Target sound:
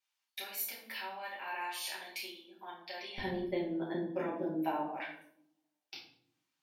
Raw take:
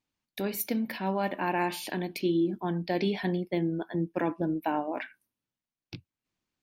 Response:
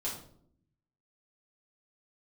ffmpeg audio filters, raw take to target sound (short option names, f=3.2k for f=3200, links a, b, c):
-filter_complex "[0:a]acompressor=threshold=-37dB:ratio=3,asetnsamples=n=441:p=0,asendcmd='3.18 highpass f 220;4.83 highpass f 830',highpass=1.2k[a];[1:a]atrim=start_sample=2205,asetrate=38808,aresample=44100[b];[a][b]afir=irnorm=-1:irlink=0"